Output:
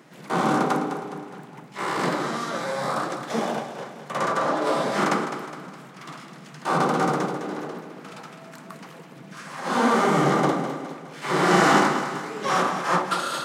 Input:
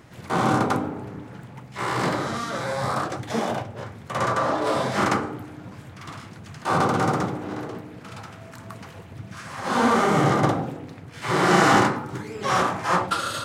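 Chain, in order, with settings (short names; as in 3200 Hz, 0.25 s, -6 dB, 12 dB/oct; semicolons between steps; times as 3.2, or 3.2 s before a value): elliptic high-pass 150 Hz, stop band 40 dB; on a send: thinning echo 0.207 s, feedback 50%, high-pass 220 Hz, level -9.5 dB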